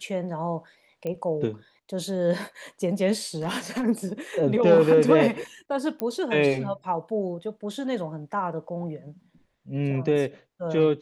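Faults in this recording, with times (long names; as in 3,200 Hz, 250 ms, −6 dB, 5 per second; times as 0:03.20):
0:01.07: click −20 dBFS
0:03.35–0:03.84: clipping −22.5 dBFS
0:06.00: click −15 dBFS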